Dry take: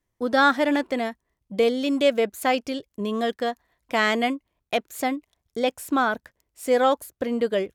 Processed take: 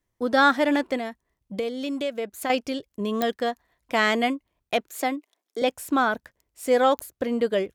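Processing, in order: 0.96–2.5 compressor 3:1, threshold -28 dBFS, peak gain reduction 10.5 dB; 4.89–5.62 steep high-pass 260 Hz; pops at 3.22/6.99, -10 dBFS

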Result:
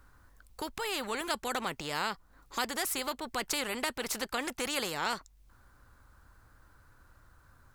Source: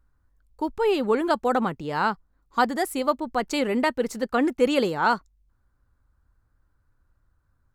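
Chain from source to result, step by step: compressor 1.5:1, threshold -37 dBFS, peak gain reduction 8 dB; low shelf 450 Hz -9 dB; spectral compressor 2:1

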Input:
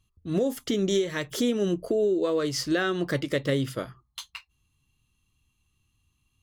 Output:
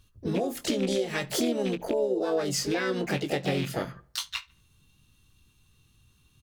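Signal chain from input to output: rattling part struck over -29 dBFS, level -22 dBFS; compressor 5:1, threshold -35 dBFS, peak gain reduction 13.5 dB; doubler 21 ms -9.5 dB; darkening echo 74 ms, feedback 41%, low-pass 4200 Hz, level -23 dB; harmoniser +5 st -4 dB, +7 st -12 dB; gain +6.5 dB

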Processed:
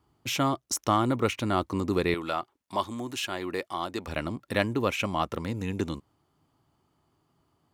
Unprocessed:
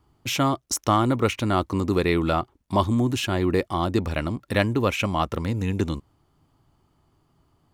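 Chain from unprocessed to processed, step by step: HPF 100 Hz 6 dB/oct, from 2.14 s 730 Hz, from 4.08 s 150 Hz; gain -3.5 dB

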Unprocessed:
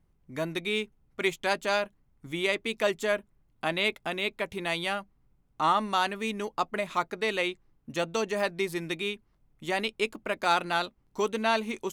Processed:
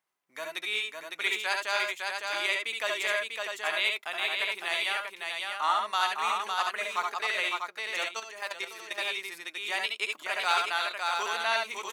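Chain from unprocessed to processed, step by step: HPF 1000 Hz 12 dB/oct; tapped delay 68/71/557/645 ms -7/-5/-4/-5.5 dB; 8.04–8.98 level quantiser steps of 11 dB

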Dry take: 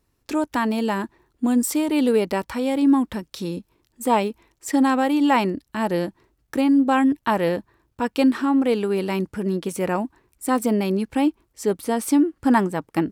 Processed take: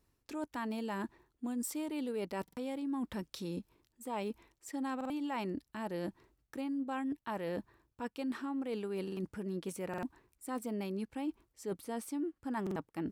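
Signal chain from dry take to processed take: reverse; compressor 5:1, threshold -31 dBFS, peak gain reduction 16 dB; reverse; stuck buffer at 2.43/4.96/9.03/9.89/12.62, samples 2048, times 2; gain -5.5 dB

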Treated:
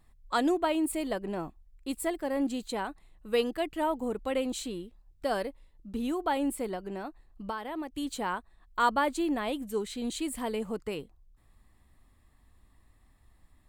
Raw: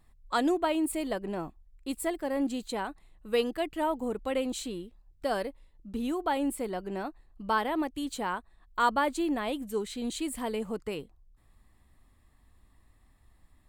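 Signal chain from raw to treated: 6.74–7.92 compressor 6:1, threshold -33 dBFS, peak gain reduction 11 dB

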